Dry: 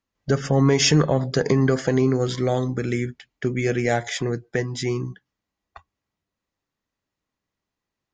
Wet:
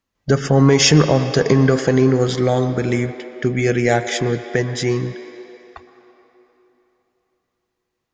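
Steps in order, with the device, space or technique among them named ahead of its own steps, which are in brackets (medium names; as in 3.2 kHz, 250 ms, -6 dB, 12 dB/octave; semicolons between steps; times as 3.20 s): filtered reverb send (on a send: high-pass 300 Hz 24 dB/octave + low-pass 4.1 kHz 12 dB/octave + reverberation RT60 3.3 s, pre-delay 108 ms, DRR 9.5 dB); on the sum: trim +5 dB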